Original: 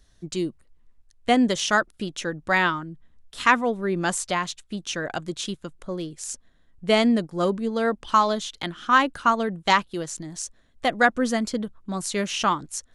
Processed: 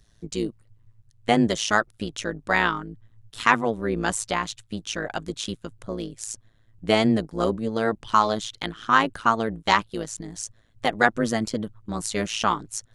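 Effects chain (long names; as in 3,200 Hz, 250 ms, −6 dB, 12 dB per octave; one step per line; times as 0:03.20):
amplitude modulation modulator 110 Hz, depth 70%
level +3 dB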